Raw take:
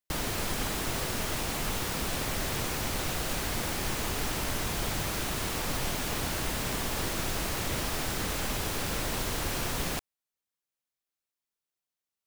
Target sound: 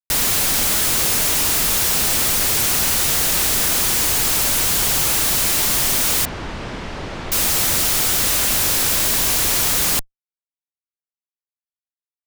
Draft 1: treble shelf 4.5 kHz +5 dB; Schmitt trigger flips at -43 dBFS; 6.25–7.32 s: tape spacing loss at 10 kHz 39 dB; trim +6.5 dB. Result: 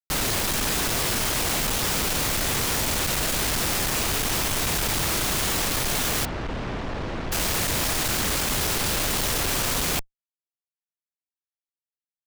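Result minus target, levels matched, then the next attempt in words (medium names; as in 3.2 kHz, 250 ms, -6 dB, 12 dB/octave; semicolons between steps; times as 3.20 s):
4 kHz band +2.5 dB
treble shelf 4.5 kHz +16.5 dB; Schmitt trigger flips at -43 dBFS; 6.25–7.32 s: tape spacing loss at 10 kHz 39 dB; trim +6.5 dB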